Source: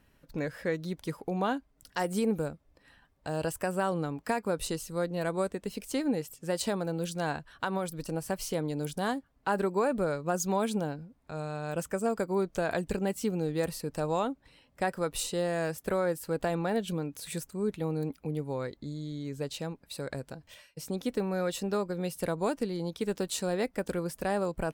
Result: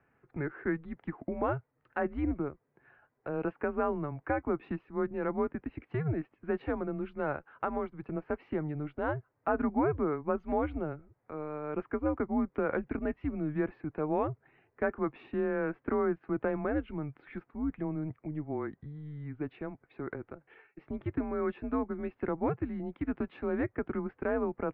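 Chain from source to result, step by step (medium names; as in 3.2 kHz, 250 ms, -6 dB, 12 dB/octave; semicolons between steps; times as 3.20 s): mistuned SSB -150 Hz 270–2300 Hz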